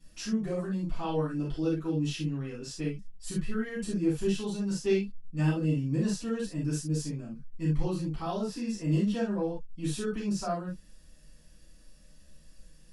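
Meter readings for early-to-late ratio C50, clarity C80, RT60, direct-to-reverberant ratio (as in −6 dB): 3.5 dB, 15.5 dB, non-exponential decay, −10.5 dB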